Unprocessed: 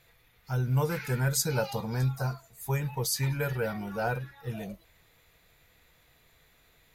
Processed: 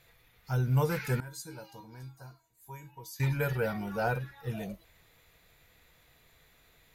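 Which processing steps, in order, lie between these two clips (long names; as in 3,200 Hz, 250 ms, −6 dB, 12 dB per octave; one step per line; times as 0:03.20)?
0:01.20–0:03.20: tuned comb filter 320 Hz, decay 0.26 s, harmonics odd, mix 90%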